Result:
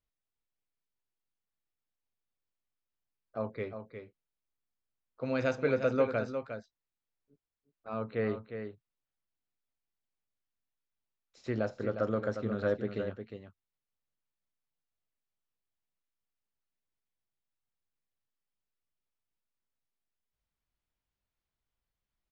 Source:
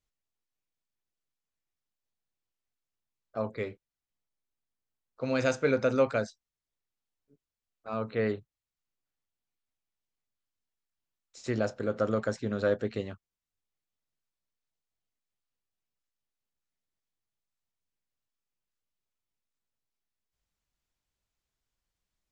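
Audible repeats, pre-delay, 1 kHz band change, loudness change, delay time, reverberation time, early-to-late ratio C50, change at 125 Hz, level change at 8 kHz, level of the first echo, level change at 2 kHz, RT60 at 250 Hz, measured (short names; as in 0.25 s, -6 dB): 1, none, -2.5 dB, -3.0 dB, 0.357 s, none, none, -2.0 dB, under -10 dB, -8.5 dB, -3.5 dB, none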